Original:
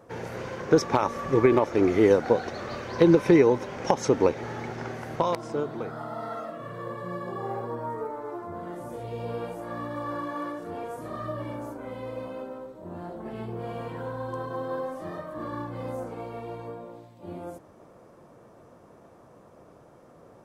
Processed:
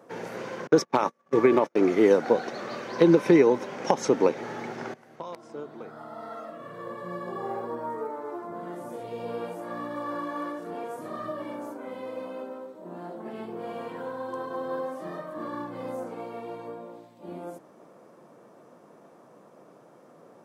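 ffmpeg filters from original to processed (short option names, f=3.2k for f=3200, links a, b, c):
-filter_complex "[0:a]asettb=1/sr,asplit=3[a][b][c];[a]atrim=end=0.674[d];[b]atrim=start=0.67:end=2.11,asetpts=PTS-STARTPTS,afade=t=in:d=0.004:c=qsin,afade=t=out:st=1.436:d=0.004:c=qsin,agate=range=-38dB:threshold=-29dB:ratio=16:release=100:detection=peak[e];[c]atrim=start=2.106[f];[d][e]acrossfade=d=0.004:c1=hsin:c2=qsin[g];[g][f]acrossfade=d=0.004:c1=qsin:c2=hsin,asettb=1/sr,asplit=3[h][i][j];[h]atrim=end=11.294[k];[i]atrim=start=11.29:end=14.65,asetpts=PTS-STARTPTS,afade=t=in:d=0.004:c=qsin,afade=t=out:st=3.356:d=0.004:c=qsin,highpass=160[l];[j]atrim=start=14.646[m];[k][l]acrossfade=d=0.004:c1=hsin:c2=qsin[n];[n][m]acrossfade=d=0.004:c1=qsin:c2=hsin,asplit=2[o][p];[o]atrim=end=4.94,asetpts=PTS-STARTPTS,afade=t=out:st=4.936:d=0.004:c=hsin:silence=0.112202[q];[p]atrim=start=4.94,asetpts=PTS-STARTPTS,afade=t=in:d=2.45:silence=0.112202[r];[q][r]concat=n=2:v=0:a=1,highpass=f=160:w=0.5412,highpass=f=160:w=1.3066"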